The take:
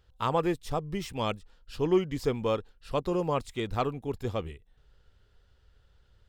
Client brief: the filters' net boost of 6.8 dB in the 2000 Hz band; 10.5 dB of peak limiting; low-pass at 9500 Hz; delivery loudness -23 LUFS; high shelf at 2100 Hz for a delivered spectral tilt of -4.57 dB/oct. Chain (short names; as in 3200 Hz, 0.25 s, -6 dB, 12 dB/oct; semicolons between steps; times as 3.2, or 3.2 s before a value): LPF 9500 Hz; bell 2000 Hz +6 dB; high shelf 2100 Hz +4 dB; gain +11.5 dB; limiter -10.5 dBFS